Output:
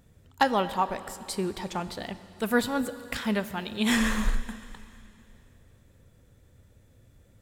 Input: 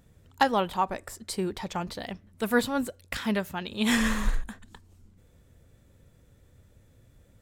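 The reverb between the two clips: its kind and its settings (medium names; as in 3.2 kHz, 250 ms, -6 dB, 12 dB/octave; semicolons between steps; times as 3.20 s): plate-style reverb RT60 2.9 s, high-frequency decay 1×, DRR 12.5 dB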